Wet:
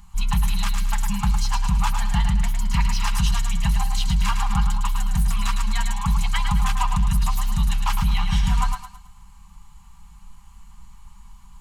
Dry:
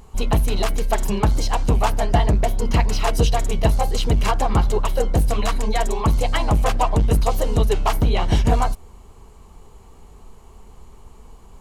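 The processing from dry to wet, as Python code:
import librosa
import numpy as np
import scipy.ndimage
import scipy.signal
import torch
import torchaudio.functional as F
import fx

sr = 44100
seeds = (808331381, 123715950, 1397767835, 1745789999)

p1 = scipy.signal.sosfilt(scipy.signal.ellip(3, 1.0, 40, [190.0, 890.0], 'bandstop', fs=sr, output='sos'), x)
p2 = fx.peak_eq(p1, sr, hz=470.0, db=-3.0, octaves=2.0)
p3 = p2 + 0.45 * np.pad(p2, (int(5.0 * sr / 1000.0), 0))[:len(p2)]
p4 = p3 + fx.echo_thinned(p3, sr, ms=108, feedback_pct=38, hz=210.0, wet_db=-6, dry=0)
y = F.gain(torch.from_numpy(p4), -2.0).numpy()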